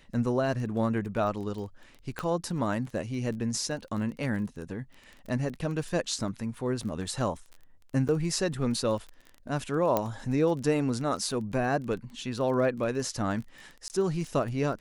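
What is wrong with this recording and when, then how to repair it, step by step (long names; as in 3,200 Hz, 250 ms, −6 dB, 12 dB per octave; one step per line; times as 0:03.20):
surface crackle 21 per second −37 dBFS
0:02.19: click −18 dBFS
0:08.08–0:08.09: drop-out 7.6 ms
0:09.97: click −12 dBFS
0:13.88–0:13.90: drop-out 19 ms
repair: click removal
repair the gap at 0:08.08, 7.6 ms
repair the gap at 0:13.88, 19 ms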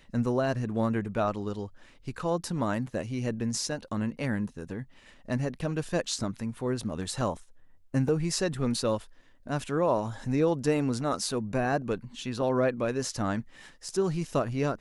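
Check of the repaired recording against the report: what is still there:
none of them is left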